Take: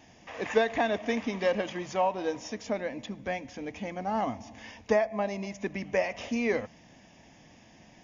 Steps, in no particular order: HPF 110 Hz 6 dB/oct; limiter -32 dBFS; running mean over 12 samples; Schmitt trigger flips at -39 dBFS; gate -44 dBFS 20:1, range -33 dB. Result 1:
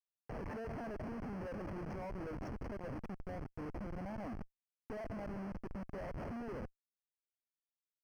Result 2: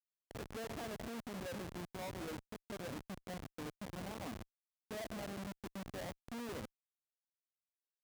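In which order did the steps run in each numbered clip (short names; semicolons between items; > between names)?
gate > limiter > HPF > Schmitt trigger > running mean; limiter > running mean > gate > Schmitt trigger > HPF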